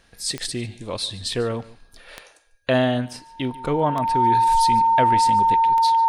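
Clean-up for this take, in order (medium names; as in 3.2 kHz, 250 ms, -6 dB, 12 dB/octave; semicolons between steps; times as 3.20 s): de-click; band-stop 910 Hz, Q 30; inverse comb 145 ms -20 dB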